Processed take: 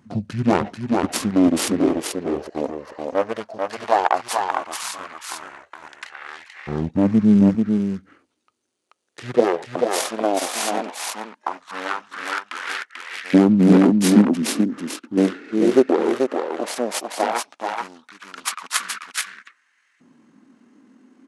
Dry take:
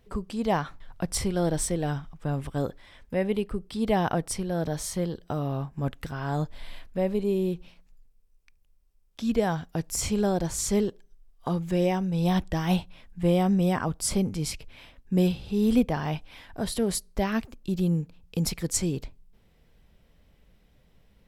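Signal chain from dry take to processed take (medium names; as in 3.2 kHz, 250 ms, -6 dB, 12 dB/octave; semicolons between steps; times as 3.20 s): self-modulated delay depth 0.72 ms; high-pass sweep 77 Hz -> 460 Hz, 7.81–9.97 s; on a send: delay 437 ms -3.5 dB; on the sum: LFO high-pass saw up 0.15 Hz 300–3800 Hz; pitch shift -11 st; trim +7 dB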